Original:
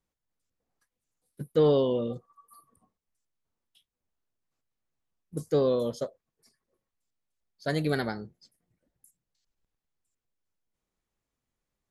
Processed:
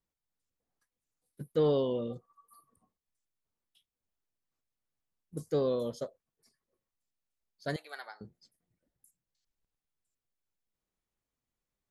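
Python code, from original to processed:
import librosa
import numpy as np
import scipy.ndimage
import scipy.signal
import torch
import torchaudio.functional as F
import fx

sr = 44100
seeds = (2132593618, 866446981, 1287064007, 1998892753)

y = fx.ladder_highpass(x, sr, hz=680.0, resonance_pct=30, at=(7.76, 8.21))
y = y * librosa.db_to_amplitude(-5.0)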